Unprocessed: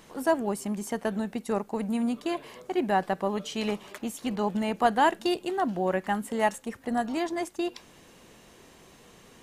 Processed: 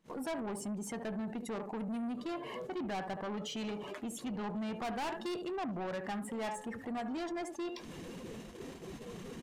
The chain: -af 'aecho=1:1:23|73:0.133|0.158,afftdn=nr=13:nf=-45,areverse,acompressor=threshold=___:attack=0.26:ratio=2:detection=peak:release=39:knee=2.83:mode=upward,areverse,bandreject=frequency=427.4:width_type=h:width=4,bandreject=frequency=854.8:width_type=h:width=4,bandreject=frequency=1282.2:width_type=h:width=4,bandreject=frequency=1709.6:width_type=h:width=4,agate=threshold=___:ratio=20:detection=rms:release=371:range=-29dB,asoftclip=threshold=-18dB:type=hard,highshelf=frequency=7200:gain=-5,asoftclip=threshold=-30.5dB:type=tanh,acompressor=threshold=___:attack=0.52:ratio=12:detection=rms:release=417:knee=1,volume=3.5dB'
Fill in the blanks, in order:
-31dB, -46dB, -39dB